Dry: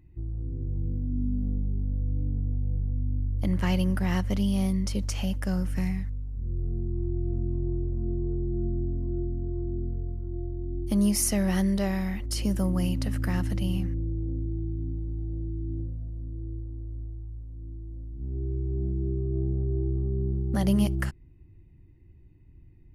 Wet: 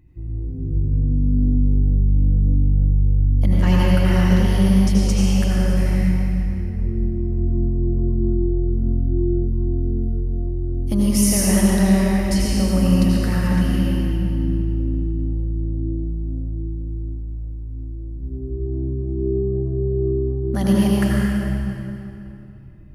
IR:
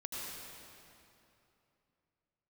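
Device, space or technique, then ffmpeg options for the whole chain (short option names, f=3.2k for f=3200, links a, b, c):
stairwell: -filter_complex "[1:a]atrim=start_sample=2205[a];[0:a][a]afir=irnorm=-1:irlink=0,volume=8dB"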